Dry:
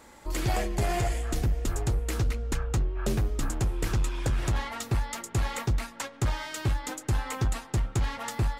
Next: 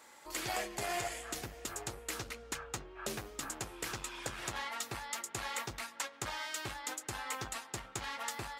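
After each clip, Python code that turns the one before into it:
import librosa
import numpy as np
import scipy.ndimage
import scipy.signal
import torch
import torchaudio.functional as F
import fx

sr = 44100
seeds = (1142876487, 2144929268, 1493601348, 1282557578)

y = fx.highpass(x, sr, hz=950.0, slope=6)
y = F.gain(torch.from_numpy(y), -2.0).numpy()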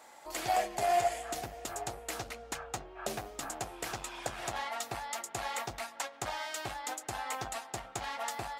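y = fx.peak_eq(x, sr, hz=710.0, db=12.0, octaves=0.51)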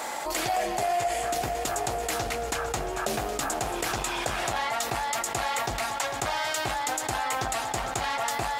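y = fx.echo_heads(x, sr, ms=225, heads='first and second', feedback_pct=70, wet_db=-19.5)
y = fx.env_flatten(y, sr, amount_pct=70)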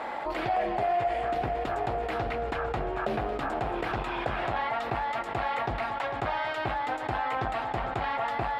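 y = fx.air_absorb(x, sr, metres=440.0)
y = F.gain(torch.from_numpy(y), 1.5).numpy()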